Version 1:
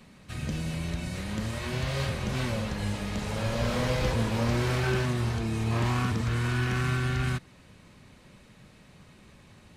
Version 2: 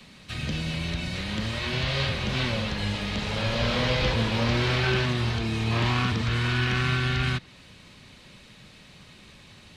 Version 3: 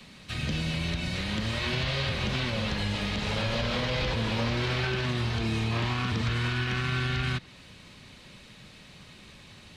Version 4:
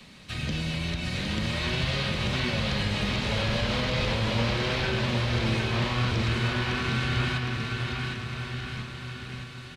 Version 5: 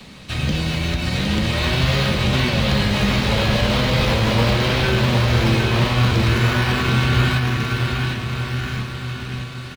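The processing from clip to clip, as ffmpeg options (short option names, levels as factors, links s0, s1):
-filter_complex "[0:a]equalizer=f=3700:w=0.79:g=10,acrossover=split=210|410|4900[s0][s1][s2][s3];[s3]acompressor=threshold=0.00224:ratio=5[s4];[s0][s1][s2][s4]amix=inputs=4:normalize=0,volume=1.19"
-af "alimiter=limit=0.106:level=0:latency=1:release=101"
-af "aecho=1:1:760|1444|2060|2614|3112:0.631|0.398|0.251|0.158|0.1"
-filter_complex "[0:a]asplit=2[s0][s1];[s1]acrusher=samples=14:mix=1:aa=0.000001:lfo=1:lforange=8.4:lforate=0.89,volume=0.316[s2];[s0][s2]amix=inputs=2:normalize=0,asplit=2[s3][s4];[s4]adelay=15,volume=0.299[s5];[s3][s5]amix=inputs=2:normalize=0,volume=2.24"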